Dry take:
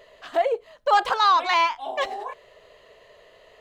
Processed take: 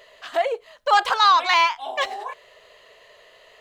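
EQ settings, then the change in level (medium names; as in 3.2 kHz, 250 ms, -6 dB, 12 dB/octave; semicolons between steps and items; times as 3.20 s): tilt shelf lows -5.5 dB, about 700 Hz; 0.0 dB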